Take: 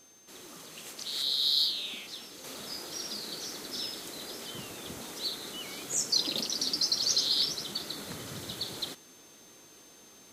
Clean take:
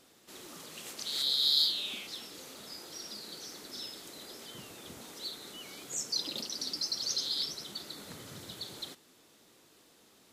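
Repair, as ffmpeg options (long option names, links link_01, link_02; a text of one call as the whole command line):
ffmpeg -i in.wav -af "adeclick=threshold=4,bandreject=frequency=6300:width=30,asetnsamples=nb_out_samples=441:pad=0,asendcmd='2.44 volume volume -6dB',volume=0dB" out.wav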